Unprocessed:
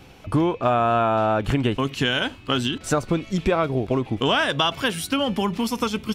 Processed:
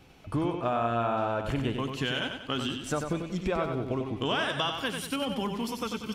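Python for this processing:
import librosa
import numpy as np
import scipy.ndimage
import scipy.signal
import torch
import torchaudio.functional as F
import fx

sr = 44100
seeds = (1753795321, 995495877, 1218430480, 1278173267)

y = fx.echo_feedback(x, sr, ms=94, feedback_pct=44, wet_db=-6.0)
y = y * librosa.db_to_amplitude(-9.0)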